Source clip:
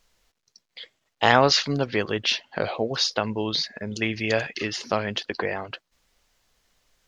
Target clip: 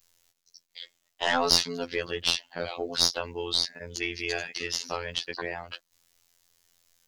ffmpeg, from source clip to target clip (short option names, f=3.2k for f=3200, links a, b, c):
-af "afftfilt=real='hypot(re,im)*cos(PI*b)':imag='0':win_size=2048:overlap=0.75,crystalizer=i=3:c=0,aeval=exprs='(tanh(1.41*val(0)+0.55)-tanh(0.55))/1.41':c=same,volume=-1dB"